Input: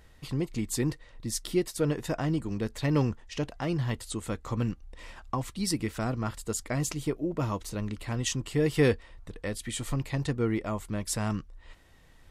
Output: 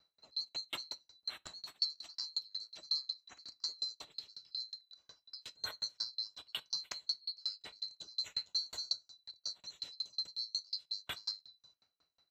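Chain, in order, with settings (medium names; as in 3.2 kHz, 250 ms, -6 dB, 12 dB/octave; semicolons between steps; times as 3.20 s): split-band scrambler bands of 4 kHz; high-pass 48 Hz; bass shelf 240 Hz -5.5 dB; in parallel at -3 dB: compression, threshold -35 dBFS, peak gain reduction 16 dB; on the sum: level-controlled noise filter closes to 1.8 kHz, open at -24 dBFS; low-pass 8.8 kHz 12 dB/octave; peaking EQ 70 Hz +8 dB 2.1 oct; on a send at -11 dB: reverberation RT60 0.70 s, pre-delay 7 ms; on the sum: sawtooth tremolo in dB decaying 5.5 Hz, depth 36 dB; trim -5 dB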